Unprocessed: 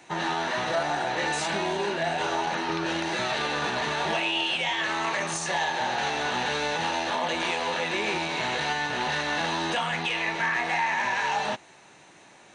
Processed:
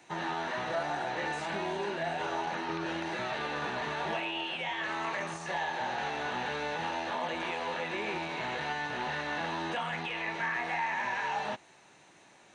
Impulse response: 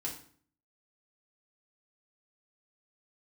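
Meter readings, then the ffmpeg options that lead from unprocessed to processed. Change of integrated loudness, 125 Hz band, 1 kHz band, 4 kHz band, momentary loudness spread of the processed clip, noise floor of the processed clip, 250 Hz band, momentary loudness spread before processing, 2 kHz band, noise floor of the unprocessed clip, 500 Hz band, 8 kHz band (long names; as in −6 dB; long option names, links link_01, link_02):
−7.0 dB, −6.0 dB, −6.0 dB, −10.5 dB, 3 LU, −59 dBFS, −6.0 dB, 3 LU, −7.0 dB, −53 dBFS, −6.0 dB, −14.0 dB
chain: -filter_complex "[0:a]acrossover=split=2900[link_01][link_02];[link_02]acompressor=threshold=-43dB:ratio=4:attack=1:release=60[link_03];[link_01][link_03]amix=inputs=2:normalize=0,volume=-6dB"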